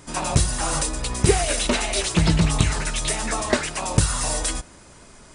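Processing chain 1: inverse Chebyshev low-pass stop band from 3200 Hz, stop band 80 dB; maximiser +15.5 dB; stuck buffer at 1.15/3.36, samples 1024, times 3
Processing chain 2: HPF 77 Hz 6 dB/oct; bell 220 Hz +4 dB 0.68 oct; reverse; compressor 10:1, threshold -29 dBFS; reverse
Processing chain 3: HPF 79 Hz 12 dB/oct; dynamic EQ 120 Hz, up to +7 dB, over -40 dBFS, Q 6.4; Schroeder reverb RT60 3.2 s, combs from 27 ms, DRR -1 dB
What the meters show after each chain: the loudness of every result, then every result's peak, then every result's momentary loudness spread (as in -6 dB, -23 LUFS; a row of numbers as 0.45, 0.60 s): -14.0, -32.5, -19.5 LUFS; -1.0, -18.5, -1.5 dBFS; 8, 4, 5 LU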